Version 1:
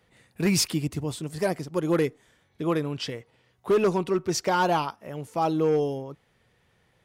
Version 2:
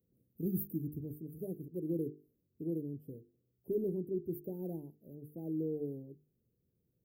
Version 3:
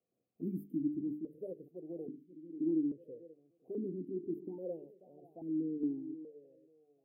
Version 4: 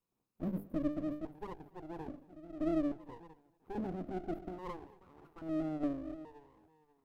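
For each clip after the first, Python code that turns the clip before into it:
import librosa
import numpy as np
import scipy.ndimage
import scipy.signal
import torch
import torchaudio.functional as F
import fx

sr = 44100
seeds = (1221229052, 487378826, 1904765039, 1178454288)

y1 = scipy.signal.sosfilt(scipy.signal.cheby2(4, 60, [1100.0, 6800.0], 'bandstop', fs=sr, output='sos'), x)
y1 = fx.tilt_eq(y1, sr, slope=2.0)
y1 = fx.hum_notches(y1, sr, base_hz=50, count=9)
y1 = y1 * librosa.db_to_amplitude(-4.5)
y2 = fx.echo_feedback(y1, sr, ms=536, feedback_pct=39, wet_db=-16)
y2 = fx.vowel_held(y2, sr, hz=2.4)
y2 = y2 * librosa.db_to_amplitude(11.0)
y3 = fx.lower_of_two(y2, sr, delay_ms=0.77)
y3 = y3 + 10.0 ** (-23.5 / 20.0) * np.pad(y3, (int(230 * sr / 1000.0), 0))[:len(y3)]
y3 = y3 * librosa.db_to_amplitude(1.5)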